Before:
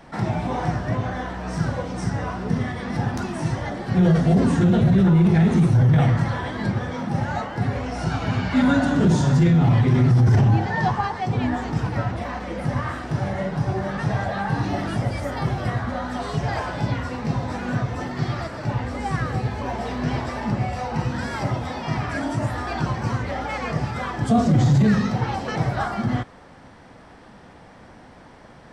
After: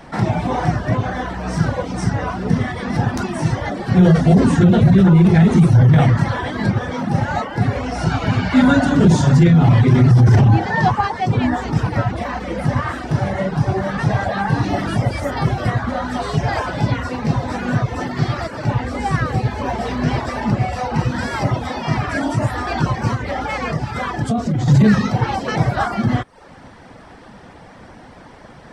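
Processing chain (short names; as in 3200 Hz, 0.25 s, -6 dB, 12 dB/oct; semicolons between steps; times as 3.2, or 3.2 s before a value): reverb removal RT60 0.5 s; 23.13–24.68 compressor 4:1, threshold -24 dBFS, peak gain reduction 9 dB; gain +6.5 dB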